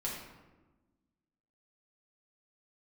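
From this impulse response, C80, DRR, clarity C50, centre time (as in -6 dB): 4.5 dB, -5.0 dB, 2.0 dB, 55 ms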